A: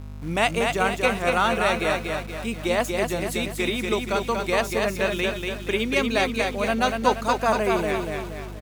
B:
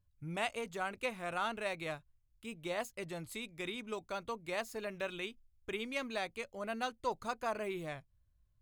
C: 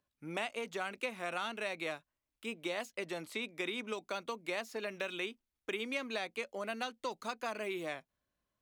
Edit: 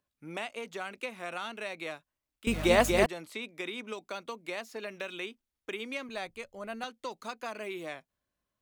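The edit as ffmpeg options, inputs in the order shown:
ffmpeg -i take0.wav -i take1.wav -i take2.wav -filter_complex "[2:a]asplit=3[link_01][link_02][link_03];[link_01]atrim=end=2.472[link_04];[0:a]atrim=start=2.468:end=3.062[link_05];[link_02]atrim=start=3.058:end=6.092[link_06];[1:a]atrim=start=6.088:end=6.842[link_07];[link_03]atrim=start=6.838[link_08];[link_04][link_05]acrossfade=duration=0.004:curve1=hsin:curve2=hsin[link_09];[link_09][link_06]acrossfade=duration=0.004:curve1=hsin:curve2=hsin[link_10];[link_10][link_07]acrossfade=duration=0.004:curve1=hsin:curve2=hsin[link_11];[link_11][link_08]acrossfade=duration=0.004:curve1=hsin:curve2=hsin" out.wav

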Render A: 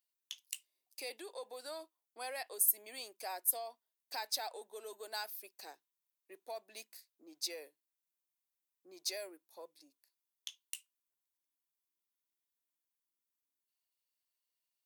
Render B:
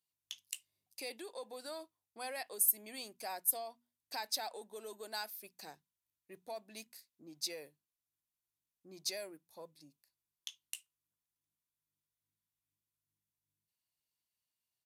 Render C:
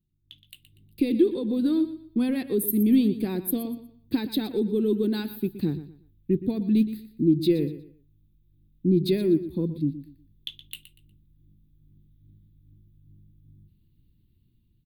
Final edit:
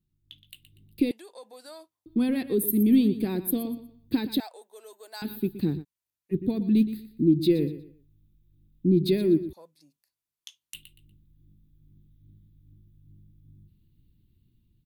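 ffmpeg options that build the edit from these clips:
ffmpeg -i take0.wav -i take1.wav -i take2.wav -filter_complex "[1:a]asplit=3[link_01][link_02][link_03];[2:a]asplit=5[link_04][link_05][link_06][link_07][link_08];[link_04]atrim=end=1.112[link_09];[link_01]atrim=start=1.108:end=2.062[link_10];[link_05]atrim=start=2.058:end=4.402[link_11];[0:a]atrim=start=4.398:end=5.222[link_12];[link_06]atrim=start=5.218:end=5.85[link_13];[link_02]atrim=start=5.81:end=6.35[link_14];[link_07]atrim=start=6.31:end=9.532[link_15];[link_03]atrim=start=9.528:end=10.742[link_16];[link_08]atrim=start=10.738[link_17];[link_09][link_10]acrossfade=duration=0.004:curve1=hsin:curve2=hsin[link_18];[link_18][link_11]acrossfade=duration=0.004:curve1=hsin:curve2=hsin[link_19];[link_19][link_12]acrossfade=duration=0.004:curve1=hsin:curve2=hsin[link_20];[link_20][link_13]acrossfade=duration=0.004:curve1=hsin:curve2=hsin[link_21];[link_21][link_14]acrossfade=duration=0.04:curve1=tri:curve2=tri[link_22];[link_22][link_15]acrossfade=duration=0.04:curve1=tri:curve2=tri[link_23];[link_23][link_16]acrossfade=duration=0.004:curve1=hsin:curve2=hsin[link_24];[link_24][link_17]acrossfade=duration=0.004:curve1=hsin:curve2=hsin" out.wav

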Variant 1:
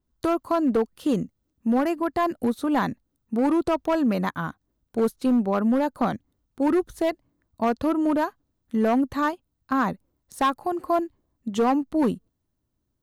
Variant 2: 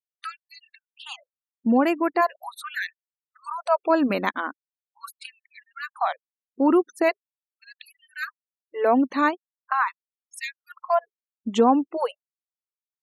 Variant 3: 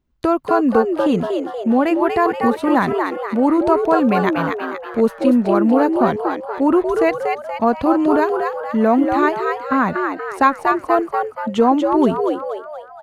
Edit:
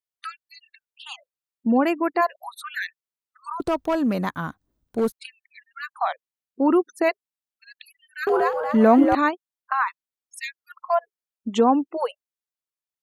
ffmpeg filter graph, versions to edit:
ffmpeg -i take0.wav -i take1.wav -i take2.wav -filter_complex "[1:a]asplit=3[link_01][link_02][link_03];[link_01]atrim=end=3.602[link_04];[0:a]atrim=start=3.598:end=5.122[link_05];[link_02]atrim=start=5.118:end=8.272[link_06];[2:a]atrim=start=8.268:end=9.152[link_07];[link_03]atrim=start=9.148[link_08];[link_04][link_05]acrossfade=duration=0.004:curve1=hsin:curve2=hsin[link_09];[link_09][link_06]acrossfade=duration=0.004:curve1=hsin:curve2=hsin[link_10];[link_10][link_07]acrossfade=duration=0.004:curve1=hsin:curve2=hsin[link_11];[link_11][link_08]acrossfade=duration=0.004:curve1=hsin:curve2=hsin" out.wav

